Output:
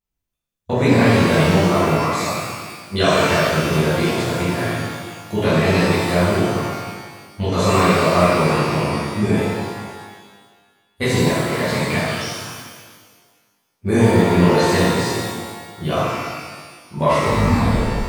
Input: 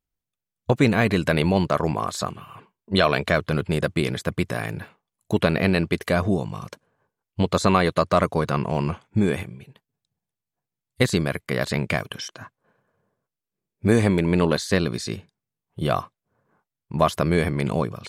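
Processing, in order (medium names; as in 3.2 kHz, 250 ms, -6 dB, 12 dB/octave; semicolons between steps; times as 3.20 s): tape stop on the ending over 1.13 s; pitch-shifted reverb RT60 1.5 s, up +12 st, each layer -8 dB, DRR -11.5 dB; trim -7.5 dB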